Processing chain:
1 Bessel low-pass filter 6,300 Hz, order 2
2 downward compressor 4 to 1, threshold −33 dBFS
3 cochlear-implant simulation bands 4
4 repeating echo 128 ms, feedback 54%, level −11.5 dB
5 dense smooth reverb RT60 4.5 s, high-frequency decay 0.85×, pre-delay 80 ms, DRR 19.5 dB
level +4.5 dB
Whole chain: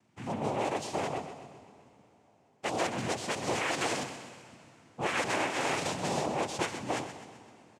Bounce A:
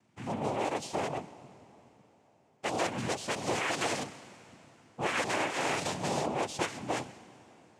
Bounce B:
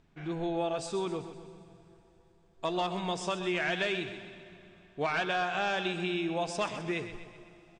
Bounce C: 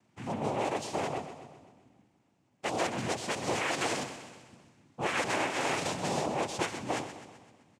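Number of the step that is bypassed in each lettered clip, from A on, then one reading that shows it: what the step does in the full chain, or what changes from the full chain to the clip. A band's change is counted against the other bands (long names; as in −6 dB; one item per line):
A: 4, echo-to-direct ratio −9.5 dB to −19.5 dB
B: 3, 8 kHz band −9.0 dB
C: 5, change in momentary loudness spread −6 LU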